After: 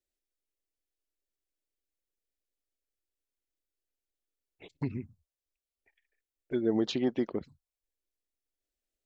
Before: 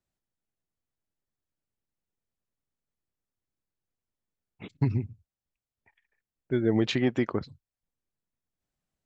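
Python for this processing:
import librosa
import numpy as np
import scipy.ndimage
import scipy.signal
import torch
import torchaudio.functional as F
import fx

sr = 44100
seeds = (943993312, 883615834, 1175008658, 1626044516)

y = fx.peak_eq(x, sr, hz=110.0, db=-12.0, octaves=0.95)
y = fx.env_phaser(y, sr, low_hz=170.0, high_hz=2500.0, full_db=-23.0)
y = y * librosa.db_to_amplitude(-1.5)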